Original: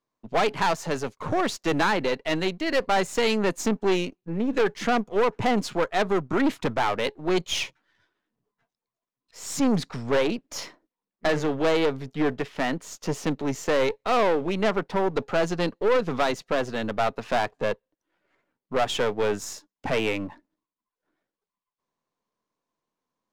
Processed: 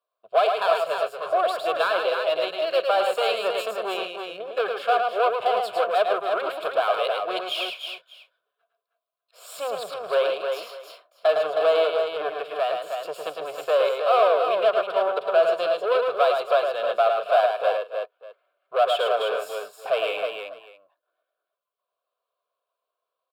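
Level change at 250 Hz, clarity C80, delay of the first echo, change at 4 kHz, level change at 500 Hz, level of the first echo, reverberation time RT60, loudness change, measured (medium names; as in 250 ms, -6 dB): -18.5 dB, no reverb, 108 ms, +1.5 dB, +4.0 dB, -4.5 dB, no reverb, +2.0 dB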